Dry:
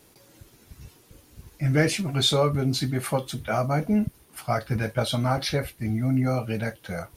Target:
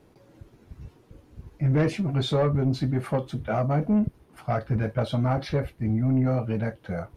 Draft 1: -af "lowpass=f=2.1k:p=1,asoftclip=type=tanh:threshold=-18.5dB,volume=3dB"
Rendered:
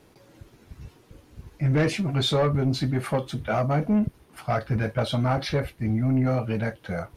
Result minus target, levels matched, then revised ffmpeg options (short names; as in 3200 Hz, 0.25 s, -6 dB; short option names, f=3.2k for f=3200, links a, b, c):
2000 Hz band +4.0 dB
-af "lowpass=f=820:p=1,asoftclip=type=tanh:threshold=-18.5dB,volume=3dB"